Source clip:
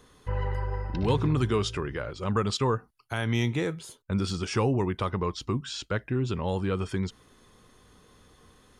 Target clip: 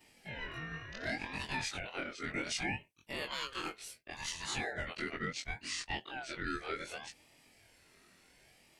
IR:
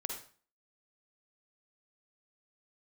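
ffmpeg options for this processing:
-af "afftfilt=real='re':imag='-im':win_size=2048:overlap=0.75,highpass=frequency=530:width=0.5412,highpass=frequency=530:width=1.3066,alimiter=level_in=5dB:limit=-24dB:level=0:latency=1:release=49,volume=-5dB,aeval=exprs='val(0)*sin(2*PI*1100*n/s+1100*0.25/0.68*sin(2*PI*0.68*n/s))':channel_layout=same,volume=4.5dB"

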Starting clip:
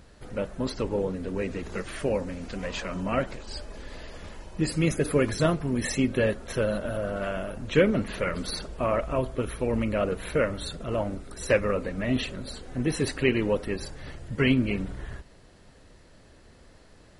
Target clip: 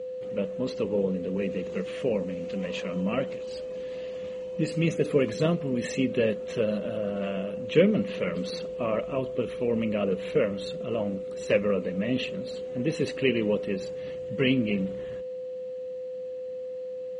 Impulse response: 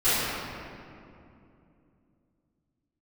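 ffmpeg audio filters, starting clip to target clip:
-af "aeval=exprs='val(0)+0.0224*sin(2*PI*510*n/s)':channel_layout=same,highpass=130,equalizer=frequency=190:width_type=q:width=4:gain=9,equalizer=frequency=460:width_type=q:width=4:gain=6,equalizer=frequency=850:width_type=q:width=4:gain=-6,equalizer=frequency=1500:width_type=q:width=4:gain=-8,equalizer=frequency=2800:width_type=q:width=4:gain=6,equalizer=frequency=5100:width_type=q:width=4:gain=-7,lowpass=frequency=7200:width=0.5412,lowpass=frequency=7200:width=1.3066,volume=-3dB"

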